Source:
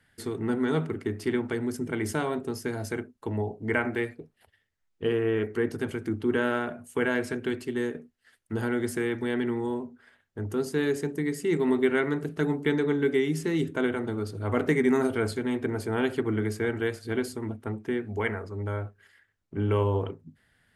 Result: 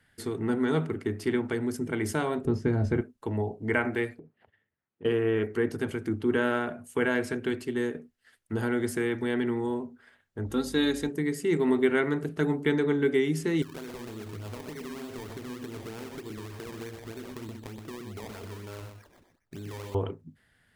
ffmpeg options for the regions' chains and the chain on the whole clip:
-filter_complex "[0:a]asettb=1/sr,asplit=3[a][b][c];[a]atrim=end=2.454[d];[b]atrim=start=2.45:end=3.01,asetpts=PTS-STARTPTS,afade=t=in:d=0.004:c=qsin,afade=t=out:st=0.556:d=0.004:c=qsin,acrossover=split=8700[e][f];[f]acompressor=threshold=-57dB:ratio=4:attack=1:release=60[g];[e][g]amix=inputs=2:normalize=0,aemphasis=mode=reproduction:type=riaa,asplit=2[h][i];[i]adelay=14,volume=-10.5dB[j];[h][j]amix=inputs=2:normalize=0,atrim=end_sample=24696[k];[c]atrim=start=3.006[l];[d][k]acrossfade=d=0.004:c1=hsin:c2=qsin[m];[m][l]acrossfade=d=0.004:c1=qsin:c2=hsin,asettb=1/sr,asplit=3[n][o][p];[n]atrim=end=4.194[q];[o]atrim=start=4.19:end=5.05,asetpts=PTS-STARTPTS,afade=t=in:d=0.004:c=qsin,afade=t=out:st=0.856:d=0.004:c=qsin,lowshelf=f=270:g=7.5,acompressor=threshold=-42dB:ratio=6:attack=3.2:release=140:knee=1:detection=peak,highpass=150,lowpass=2.1k[r];[p]atrim=start=5.046[s];[q][r]acrossfade=d=0.004:c1=hsin:c2=qsin[t];[t][s]acrossfade=d=0.004:c1=qsin:c2=hsin,asettb=1/sr,asplit=3[u][v][w];[u]atrim=end=10.464[x];[v]atrim=start=10.46:end=11.09,asetpts=PTS-STARTPTS,afade=t=in:d=0.004:c=qsin,afade=t=out:st=0.626:d=0.004:c=qsin,aecho=1:1:3.7:0.54,atrim=end_sample=27783,aeval=exprs='val(0)+0.00447*(sin(2*PI*50*n/s)+sin(2*PI*2*50*n/s)/2+sin(2*PI*3*50*n/s)/3+sin(2*PI*4*50*n/s)/4+sin(2*PI*5*50*n/s)/5)':c=same,equalizer=f=3.7k:w=6.2:g=13.5[y];[w]atrim=start=11.086[z];[x][y]acrossfade=d=0.004:c1=hsin:c2=qsin[aa];[aa][z]acrossfade=d=0.004:c1=qsin:c2=hsin,asettb=1/sr,asplit=3[ab][ac][ad];[ab]atrim=end=13.624[ae];[ac]atrim=start=13.62:end=19.95,asetpts=PTS-STARTPTS,afade=t=in:d=0.004:c=qsin,afade=t=out:st=6.326:d=0.004:c=qsin,acrusher=samples=22:mix=1:aa=0.000001:lfo=1:lforange=22:lforate=3.3,acompressor=threshold=-37dB:ratio=10:attack=3.2:release=140:knee=1:detection=peak,aecho=1:1:124:0.473,atrim=end_sample=279153[af];[ad]atrim=start=19.946[ag];[ae][af]acrossfade=d=0.004:c1=hsin:c2=qsin[ah];[ah][ag]acrossfade=d=0.004:c1=qsin:c2=hsin"

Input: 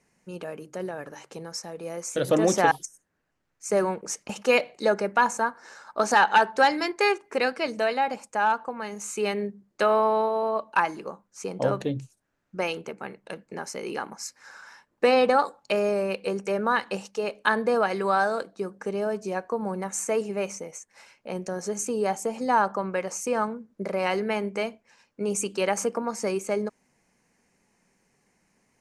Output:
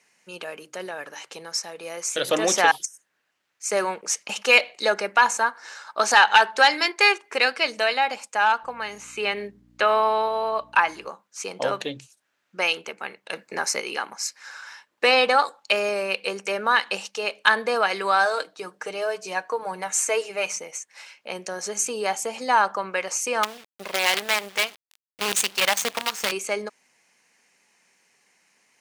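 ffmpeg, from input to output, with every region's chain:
-filter_complex "[0:a]asettb=1/sr,asplit=3[a][b][c];[a]atrim=end=8.634[d];[b]atrim=start=8.63:end=11.09,asetpts=PTS-STARTPTS,afade=t=in:d=0.004:c=qsin,afade=t=out:st=2.456:d=0.004:c=qsin,acrossover=split=3300[e][f];[f]acompressor=threshold=-50dB:ratio=4:attack=1:release=60[g];[e][g]amix=inputs=2:normalize=0,aeval=exprs='val(0)+0.00708*(sin(2*PI*60*n/s)+sin(2*PI*2*60*n/s)/2+sin(2*PI*3*60*n/s)/3+sin(2*PI*4*60*n/s)/4+sin(2*PI*5*60*n/s)/5)':c=same[h];[c]atrim=start=11.086[i];[d][h]acrossfade=d=0.004:c1=hsin:c2=qsin[j];[j][i]acrossfade=d=0.004:c1=qsin:c2=hsin,asettb=1/sr,asplit=3[k][l][m];[k]atrim=end=13.334[n];[l]atrim=start=13.33:end=13.81,asetpts=PTS-STARTPTS,afade=t=in:d=0.004:c=qsin,afade=t=out:st=0.476:d=0.004:c=qsin,equalizer=f=3.1k:t=o:w=0.25:g=-9,acontrast=46[o];[m]atrim=start=13.806[p];[n][o]acrossfade=d=0.004:c1=hsin:c2=qsin[q];[q][p]acrossfade=d=0.004:c1=qsin:c2=hsin,asettb=1/sr,asplit=3[r][s][t];[r]atrim=end=18.254[u];[s]atrim=start=18.25:end=20.57,asetpts=PTS-STARTPTS,afade=t=in:d=0.004:c=qsin,afade=t=out:st=2.316:d=0.004:c=qsin,bandreject=f=210:w=5,aecho=1:1:6.5:0.48,atrim=end_sample=102312[v];[t]atrim=start=20.566[w];[u][v]acrossfade=d=0.004:c1=hsin:c2=qsin[x];[x][w]acrossfade=d=0.004:c1=qsin:c2=hsin,asettb=1/sr,asplit=3[y][z][aa];[y]atrim=end=23.434[ab];[z]atrim=start=23.43:end=26.32,asetpts=PTS-STARTPTS,afade=t=in:d=0.004:c=qsin,afade=t=out:st=2.886:d=0.004:c=qsin,asubboost=boost=11.5:cutoff=110,acrusher=bits=5:dc=4:mix=0:aa=0.000001[ac];[aa]atrim=start=26.316[ad];[ab][ac]acrossfade=d=0.004:c1=hsin:c2=qsin[ae];[ae][ad]acrossfade=d=0.004:c1=qsin:c2=hsin,highpass=f=1k:p=1,equalizer=f=3.2k:t=o:w=1.4:g=6.5,acontrast=39"

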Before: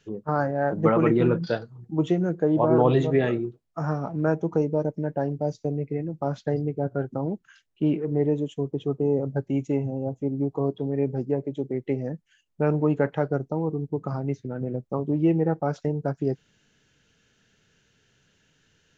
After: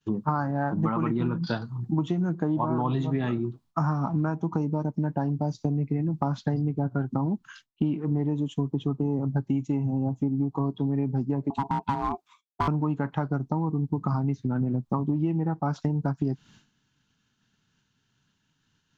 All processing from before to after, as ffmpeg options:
-filter_complex "[0:a]asettb=1/sr,asplit=3[a][b][c];[a]atrim=end=11.504[d];[b]atrim=start=11.5:end=12.68,asetpts=PTS-STARTPTS,afade=t=in:d=0.004:c=qsin,afade=t=out:st=1.176:d=0.004:c=qsin,highpass=f=50:w=0.5412,highpass=f=50:w=1.3066,aeval=exprs='val(0)*sin(2*PI*550*n/s)':c=same,volume=26.5dB,asoftclip=hard,volume=-26.5dB[e];[c]atrim=start=12.676[f];[d][e]acrossfade=d=0.004:c1=hsin:c2=qsin[g];[g][f]acrossfade=d=0.004:c1=qsin:c2=hsin,agate=range=-33dB:threshold=-54dB:ratio=3:detection=peak,equalizer=f=125:t=o:w=1:g=5,equalizer=f=250:t=o:w=1:g=8,equalizer=f=500:t=o:w=1:g=-12,equalizer=f=1k:t=o:w=1:g=12,equalizer=f=2k:t=o:w=1:g=-4,equalizer=f=4k:t=o:w=1:g=5,acompressor=threshold=-28dB:ratio=12,volume=5.5dB"

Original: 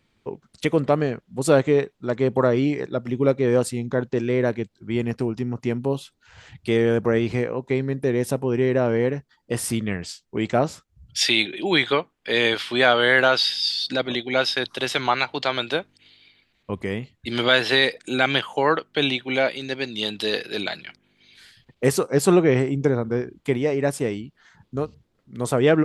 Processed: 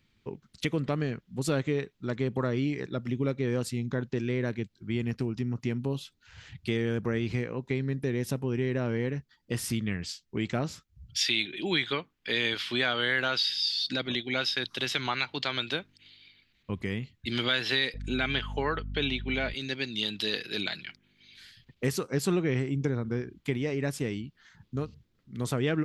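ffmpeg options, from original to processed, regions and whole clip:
-filter_complex "[0:a]asettb=1/sr,asplit=3[a][b][c];[a]atrim=end=17.944[d];[b]atrim=start=17.94:end=19.54,asetpts=PTS-STARTPTS,afade=t=in:d=0.004:c=qsin,afade=t=out:st=1.596:d=0.004:c=qsin,lowpass=f=3k:p=1,aecho=1:1:4.7:0.31,atrim=end_sample=70560,aeval=exprs='val(0)+0.02*(sin(2*PI*50*n/s)+sin(2*PI*2*50*n/s)/2+sin(2*PI*3*50*n/s)/3+sin(2*PI*4*50*n/s)/4+sin(2*PI*5*50*n/s)/5)':c=same[e];[c]atrim=start=19.536[f];[d][e]acrossfade=d=0.004:c1=hsin:c2=qsin[g];[g][f]acrossfade=d=0.004:c1=qsin:c2=hsin,equalizer=f=660:t=o:w=2:g=-11,acompressor=threshold=-27dB:ratio=2,equalizer=f=9.1k:t=o:w=0.61:g=-8.5"

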